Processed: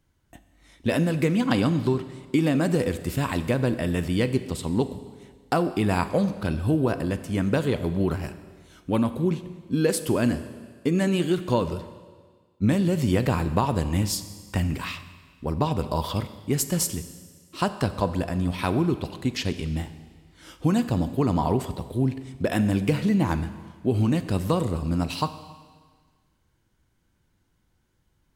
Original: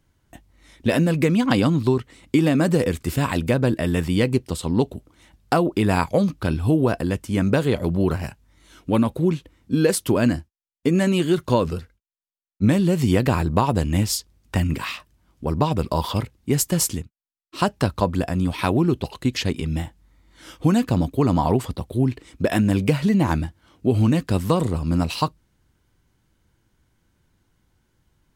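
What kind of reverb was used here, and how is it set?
Schroeder reverb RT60 1.6 s, combs from 30 ms, DRR 11.5 dB; gain -4 dB

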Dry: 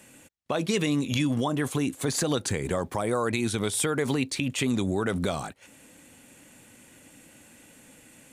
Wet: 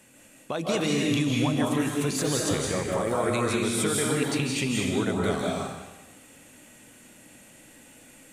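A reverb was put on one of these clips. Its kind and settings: digital reverb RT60 1.1 s, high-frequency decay 1×, pre-delay 0.12 s, DRR -3 dB; gain -3 dB

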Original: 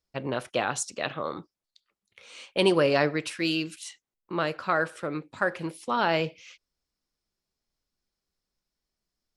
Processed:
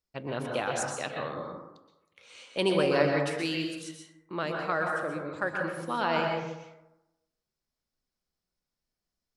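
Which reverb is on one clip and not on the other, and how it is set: plate-style reverb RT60 0.96 s, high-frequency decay 0.35×, pre-delay 0.11 s, DRR 1 dB; gain -5 dB

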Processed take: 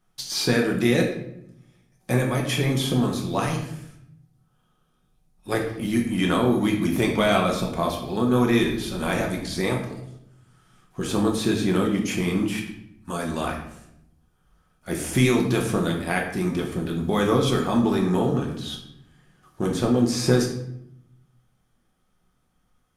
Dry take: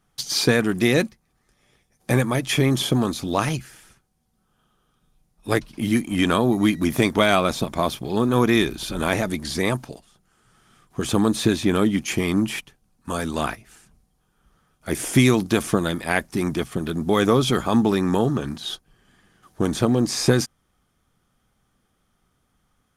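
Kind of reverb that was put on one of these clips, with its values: shoebox room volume 190 m³, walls mixed, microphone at 0.98 m; gain -5.5 dB

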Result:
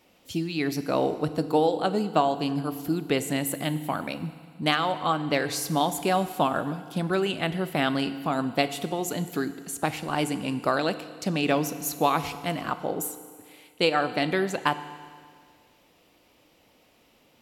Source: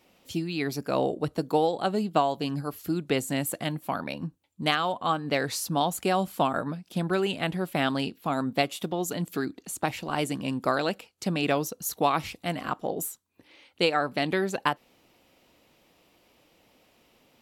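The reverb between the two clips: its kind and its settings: FDN reverb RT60 1.9 s, low-frequency decay 1×, high-frequency decay 1×, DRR 11 dB; gain +1 dB

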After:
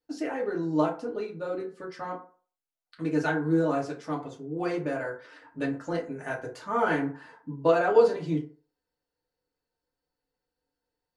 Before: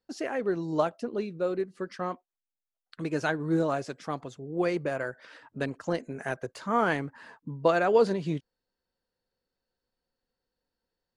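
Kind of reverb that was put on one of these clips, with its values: FDN reverb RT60 0.41 s, low-frequency decay 0.8×, high-frequency decay 0.5×, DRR -3.5 dB; gain -5.5 dB

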